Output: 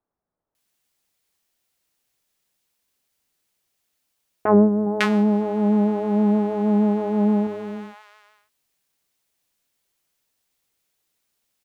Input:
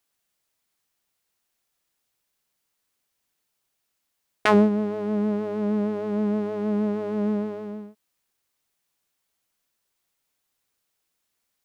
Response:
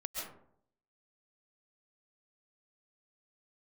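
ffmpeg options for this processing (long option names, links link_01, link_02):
-filter_complex "[0:a]asettb=1/sr,asplit=3[link_01][link_02][link_03];[link_01]atrim=end=4.864[link_04];[link_02]atrim=start=4.86:end=7.47,asetpts=PTS-STARTPTS,afade=type=in:duration=0.004:curve=qsin,afade=type=out:start_time=2.606:duration=0.004:curve=qsin,equalizer=frequency=100:width_type=o:width=0.33:gain=-9,equalizer=frequency=200:width_type=o:width=0.33:gain=4,equalizer=frequency=800:width_type=o:width=0.33:gain=11,equalizer=frequency=5000:width_type=o:width=0.33:gain=-4[link_05];[link_03]atrim=start=7.466[link_06];[link_04][link_05]acrossfade=duration=0.004:curve1=hsin:curve2=qsin[link_07];[link_07][link_06]acrossfade=duration=0.004:curve1=qsin:curve2=hsin,acrossover=split=1200[link_08][link_09];[link_09]adelay=550[link_10];[link_08][link_10]amix=inputs=2:normalize=0,volume=3dB"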